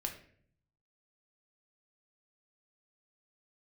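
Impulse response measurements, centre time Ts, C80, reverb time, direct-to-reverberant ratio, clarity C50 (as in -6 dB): 17 ms, 12.5 dB, 0.55 s, 2.0 dB, 9.0 dB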